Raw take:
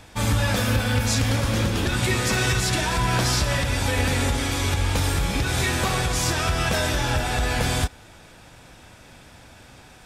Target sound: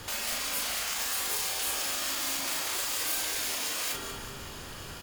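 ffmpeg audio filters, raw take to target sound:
ffmpeg -i in.wav -filter_complex "[0:a]asetrate=88200,aresample=44100,asplit=2[link_01][link_02];[link_02]aeval=exprs='(mod(17.8*val(0)+1,2)-1)/17.8':channel_layout=same,volume=-8dB[link_03];[link_01][link_03]amix=inputs=2:normalize=0,alimiter=limit=-18.5dB:level=0:latency=1:release=77,asplit=2[link_04][link_05];[link_05]aecho=0:1:189|378|567|756|945:0.251|0.123|0.0603|0.0296|0.0145[link_06];[link_04][link_06]amix=inputs=2:normalize=0,afftfilt=real='re*lt(hypot(re,im),0.0501)':imag='im*lt(hypot(re,im),0.0501)':win_size=1024:overlap=0.75,acontrast=35,asplit=2[link_07][link_08];[link_08]adelay=38,volume=-3.5dB[link_09];[link_07][link_09]amix=inputs=2:normalize=0,afreqshift=-100,volume=-5dB" out.wav

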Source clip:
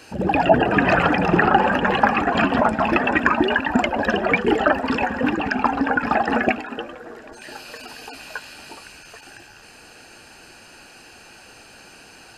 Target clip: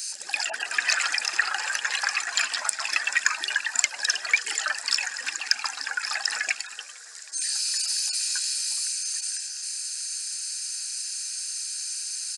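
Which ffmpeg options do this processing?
ffmpeg -i in.wav -af "aresample=22050,aresample=44100,highpass=frequency=2100:width_type=q:width=1.8,aexciter=amount=13.5:drive=7.4:freq=4400,volume=-5dB" out.wav

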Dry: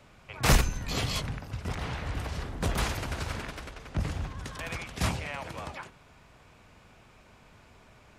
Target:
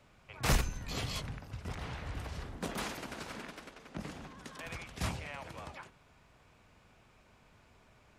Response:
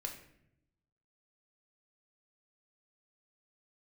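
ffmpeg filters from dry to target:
-filter_complex "[0:a]asettb=1/sr,asplit=3[link_01][link_02][link_03];[link_01]atrim=end=2.574[link_04];[link_02]atrim=start=2.57:end=4.66,asetpts=PTS-STARTPTS,afade=type=in:duration=0.004:curve=qsin,afade=type=out:start_time=2.086:duration=0.004:curve=qsin,lowshelf=frequency=140:width_type=q:width=1.5:gain=-12[link_05];[link_03]atrim=start=4.656[link_06];[link_04][link_05]acrossfade=duration=0.004:curve1=hsin:curve2=qsin[link_07];[link_07][link_06]acrossfade=duration=0.004:curve1=qsin:curve2=hsin,volume=-7dB"

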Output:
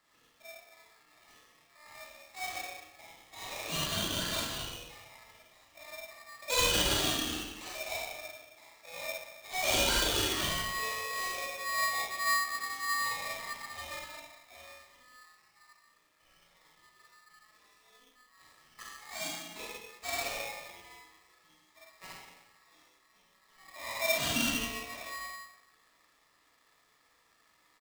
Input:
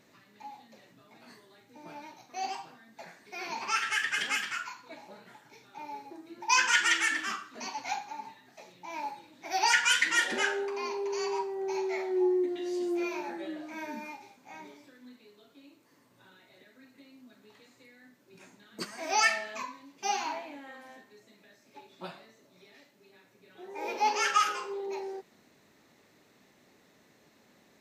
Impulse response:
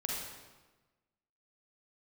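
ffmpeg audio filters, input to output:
-filter_complex "[0:a]asplit=3[link_01][link_02][link_03];[link_01]afade=type=out:start_time=18.8:duration=0.02[link_04];[link_02]equalizer=frequency=1700:width_type=o:width=2.9:gain=-15,afade=type=in:start_time=18.8:duration=0.02,afade=type=out:start_time=19.5:duration=0.02[link_05];[link_03]afade=type=in:start_time=19.5:duration=0.02[link_06];[link_04][link_05][link_06]amix=inputs=3:normalize=0,asplit=2[link_07][link_08];[link_08]acrusher=bits=5:mix=0:aa=0.5,volume=-8dB[link_09];[link_07][link_09]amix=inputs=2:normalize=0,aecho=1:1:37|52:0.398|0.447[link_10];[1:a]atrim=start_sample=2205,asetrate=52920,aresample=44100[link_11];[link_10][link_11]afir=irnorm=-1:irlink=0,aeval=exprs='val(0)*sgn(sin(2*PI*1500*n/s))':channel_layout=same,volume=-8.5dB"

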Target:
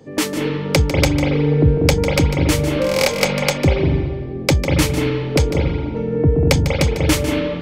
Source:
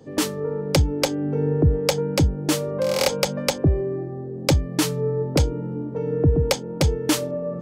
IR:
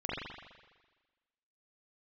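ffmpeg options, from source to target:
-filter_complex "[0:a]aeval=exprs='0.376*(cos(1*acos(clip(val(0)/0.376,-1,1)))-cos(1*PI/2))+0.00335*(cos(4*acos(clip(val(0)/0.376,-1,1)))-cos(4*PI/2))':channel_layout=same,equalizer=frequency=2200:width_type=o:width=0.49:gain=6.5,asplit=2[link_01][link_02];[1:a]atrim=start_sample=2205,adelay=149[link_03];[link_02][link_03]afir=irnorm=-1:irlink=0,volume=-7.5dB[link_04];[link_01][link_04]amix=inputs=2:normalize=0,volume=2.5dB"

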